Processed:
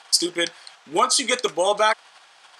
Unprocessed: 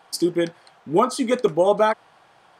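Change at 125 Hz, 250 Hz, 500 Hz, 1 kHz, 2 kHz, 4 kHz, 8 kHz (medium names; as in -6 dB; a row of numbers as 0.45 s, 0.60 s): -13.5 dB, -7.5 dB, -4.0 dB, +1.0 dB, +6.0 dB, +11.5 dB, +12.0 dB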